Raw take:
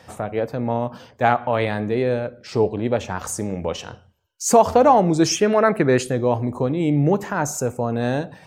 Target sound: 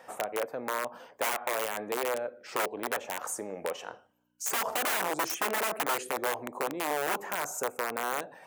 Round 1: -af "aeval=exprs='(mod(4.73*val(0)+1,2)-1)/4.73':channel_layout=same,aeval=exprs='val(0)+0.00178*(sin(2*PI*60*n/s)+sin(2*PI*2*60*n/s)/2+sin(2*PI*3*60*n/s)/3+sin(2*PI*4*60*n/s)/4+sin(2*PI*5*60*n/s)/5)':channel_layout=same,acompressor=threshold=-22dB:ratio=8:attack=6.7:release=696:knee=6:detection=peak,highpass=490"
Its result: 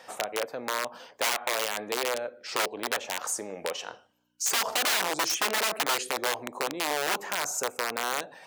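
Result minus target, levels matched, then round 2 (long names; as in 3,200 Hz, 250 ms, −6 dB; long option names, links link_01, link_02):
4,000 Hz band +6.0 dB
-af "aeval=exprs='(mod(4.73*val(0)+1,2)-1)/4.73':channel_layout=same,aeval=exprs='val(0)+0.00178*(sin(2*PI*60*n/s)+sin(2*PI*2*60*n/s)/2+sin(2*PI*3*60*n/s)/3+sin(2*PI*4*60*n/s)/4+sin(2*PI*5*60*n/s)/5)':channel_layout=same,acompressor=threshold=-22dB:ratio=8:attack=6.7:release=696:knee=6:detection=peak,highpass=490,equalizer=frequency=4400:width=0.8:gain=-11.5"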